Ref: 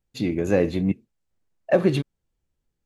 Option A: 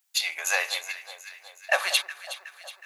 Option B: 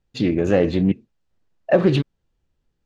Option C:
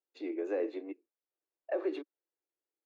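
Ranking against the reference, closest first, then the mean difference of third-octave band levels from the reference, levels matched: B, C, A; 2.0 dB, 9.5 dB, 21.5 dB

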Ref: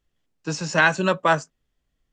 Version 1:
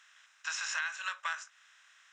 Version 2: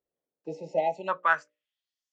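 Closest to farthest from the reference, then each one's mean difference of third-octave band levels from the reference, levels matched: 2, 1; 9.5 dB, 14.5 dB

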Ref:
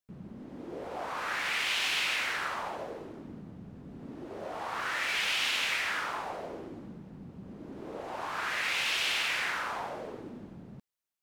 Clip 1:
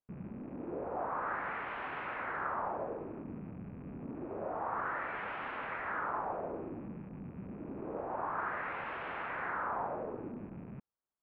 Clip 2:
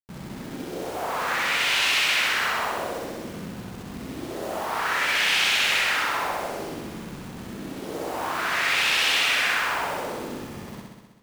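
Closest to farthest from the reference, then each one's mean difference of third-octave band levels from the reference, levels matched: 2, 1; 5.5 dB, 10.0 dB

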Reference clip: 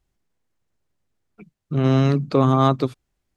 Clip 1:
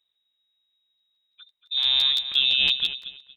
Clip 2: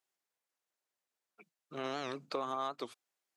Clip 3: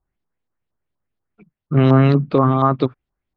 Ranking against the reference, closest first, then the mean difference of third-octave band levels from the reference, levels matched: 3, 2, 1; 3.5 dB, 8.0 dB, 15.5 dB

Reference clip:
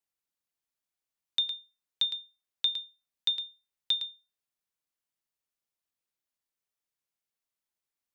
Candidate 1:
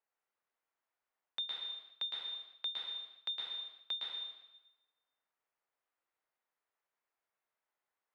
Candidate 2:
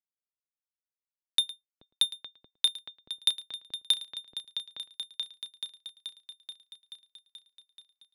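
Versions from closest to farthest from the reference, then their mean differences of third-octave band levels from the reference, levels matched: 2, 1; 4.5 dB, 9.0 dB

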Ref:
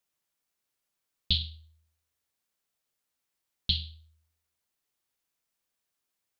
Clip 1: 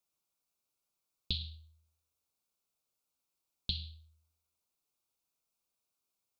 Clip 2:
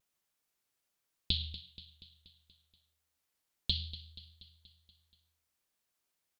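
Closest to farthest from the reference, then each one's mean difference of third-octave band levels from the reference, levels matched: 1, 2; 2.0 dB, 4.0 dB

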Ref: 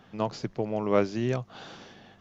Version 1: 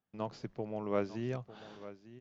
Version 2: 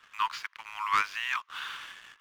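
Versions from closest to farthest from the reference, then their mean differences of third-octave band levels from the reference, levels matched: 1, 2; 3.0 dB, 15.5 dB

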